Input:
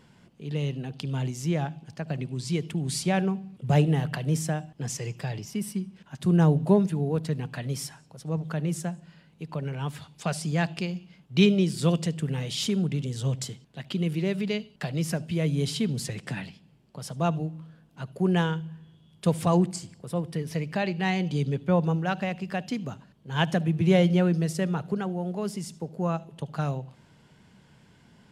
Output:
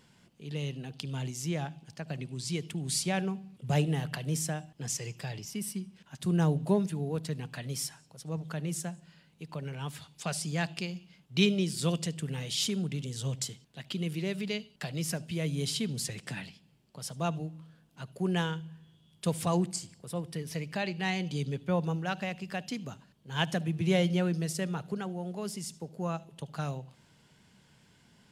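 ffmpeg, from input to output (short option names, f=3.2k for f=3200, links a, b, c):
-af "highshelf=f=2.5k:g=8.5,volume=-6.5dB"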